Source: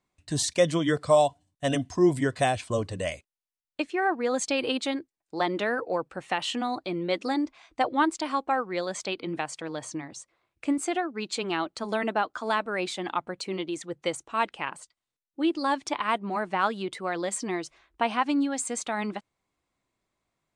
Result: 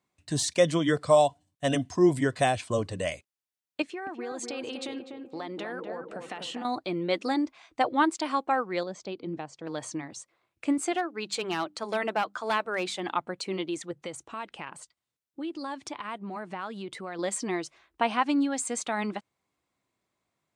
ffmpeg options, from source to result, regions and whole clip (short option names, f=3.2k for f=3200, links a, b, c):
-filter_complex "[0:a]asettb=1/sr,asplit=3[a][b][c];[a]atrim=end=3.824[d];[b]atrim=start=3.82:end=6.65,asetpts=PTS-STARTPTS,afade=t=in:d=0.004:c=qsin,afade=t=out:st=2.826:d=0.004:c=qsin,acompressor=threshold=-34dB:ratio=5:attack=3.2:release=140:knee=1:detection=peak,asplit=2[e][f];[f]adelay=247,lowpass=f=1.2k:p=1,volume=-4dB,asplit=2[g][h];[h]adelay=247,lowpass=f=1.2k:p=1,volume=0.49,asplit=2[i][j];[j]adelay=247,lowpass=f=1.2k:p=1,volume=0.49,asplit=2[k][l];[l]adelay=247,lowpass=f=1.2k:p=1,volume=0.49,asplit=2[m][n];[n]adelay=247,lowpass=f=1.2k:p=1,volume=0.49,asplit=2[o][p];[p]adelay=247,lowpass=f=1.2k:p=1,volume=0.49[q];[e][g][i][k][m][o][q]amix=inputs=7:normalize=0,atrim=end_sample=124803[r];[c]atrim=start=6.646[s];[d][r]acrossfade=d=0.004:c1=hsin:c2=qsin[t];[t][s]acrossfade=d=0.004:c1=qsin:c2=hsin,asettb=1/sr,asplit=3[u][v][w];[u]atrim=end=8.834[x];[v]atrim=start=8.83:end=9.67,asetpts=PTS-STARTPTS,afade=t=in:d=0.004:c=qsin,afade=t=out:st=0.836:d=0.004:c=qsin,lowpass=f=6.1k:w=0.5412,lowpass=f=6.1k:w=1.3066,equalizer=f=2.3k:w=0.36:g=-13[y];[w]atrim=start=9.666[z];[x][y]acrossfade=d=0.004:c1=hsin:c2=qsin[aa];[aa][z]acrossfade=d=0.004:c1=qsin:c2=hsin,asettb=1/sr,asplit=3[ab][ac][ad];[ab]atrim=end=10.924[ae];[ac]atrim=start=10.92:end=13.03,asetpts=PTS-STARTPTS,afade=t=in:d=0.004:c=qsin,afade=t=out:st=2.106:d=0.004:c=qsin,equalizer=f=250:t=o:w=0.41:g=-10,bandreject=f=50:t=h:w=6,bandreject=f=100:t=h:w=6,bandreject=f=150:t=h:w=6,bandreject=f=200:t=h:w=6,bandreject=f=250:t=h:w=6,bandreject=f=300:t=h:w=6,aeval=exprs='clip(val(0),-1,0.075)':c=same[af];[ad]atrim=start=13.026[ag];[ae][af]acrossfade=d=0.004:c1=hsin:c2=qsin[ah];[ah][ag]acrossfade=d=0.004:c1=qsin:c2=hsin,asettb=1/sr,asplit=3[ai][aj][ak];[ai]atrim=end=13.914[al];[aj]atrim=start=13.91:end=17.19,asetpts=PTS-STARTPTS,afade=t=in:d=0.004:c=qsin,afade=t=out:st=3.276:d=0.004:c=qsin,lowshelf=f=140:g=8,acompressor=threshold=-37dB:ratio=2.5:attack=3.2:release=140:knee=1:detection=peak[am];[ak]atrim=start=17.186[an];[al][am]acrossfade=d=0.004:c1=hsin:c2=qsin[ao];[ao][an]acrossfade=d=0.004:c1=qsin:c2=hsin,deesser=0.45,highpass=81"